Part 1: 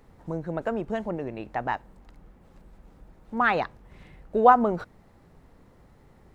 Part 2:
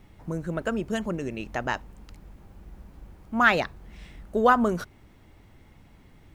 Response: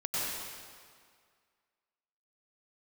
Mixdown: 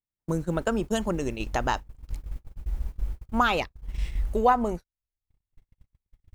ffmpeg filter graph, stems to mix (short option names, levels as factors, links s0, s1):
-filter_complex "[0:a]volume=0.631,asplit=2[s0][s1];[1:a]asubboost=boost=11:cutoff=64,volume=1.33[s2];[s1]apad=whole_len=279899[s3];[s2][s3]sidechaincompress=threshold=0.0316:ratio=10:attack=30:release=666[s4];[s0][s4]amix=inputs=2:normalize=0,agate=range=0.00282:threshold=0.0355:ratio=16:detection=peak,highshelf=f=2900:g=8"